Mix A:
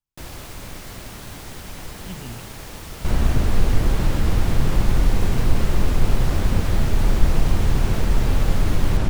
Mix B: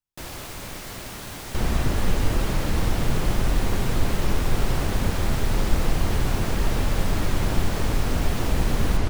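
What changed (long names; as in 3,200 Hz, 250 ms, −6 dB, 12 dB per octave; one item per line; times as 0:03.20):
first sound: send +8.0 dB
second sound: entry −1.50 s
master: add low-shelf EQ 180 Hz −5.5 dB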